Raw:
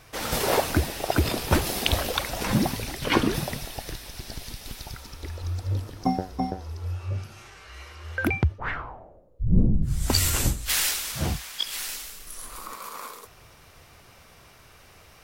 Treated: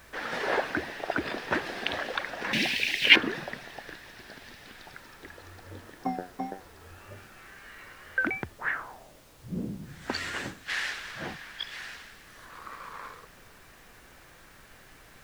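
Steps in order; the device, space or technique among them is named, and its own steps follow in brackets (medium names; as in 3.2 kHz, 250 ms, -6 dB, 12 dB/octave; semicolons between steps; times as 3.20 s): horn gramophone (band-pass 240–3400 Hz; peaking EQ 1.7 kHz +11 dB 0.45 oct; wow and flutter; pink noise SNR 19 dB); 2.53–3.16 s: resonant high shelf 1.8 kHz +12.5 dB, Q 3; trim -5.5 dB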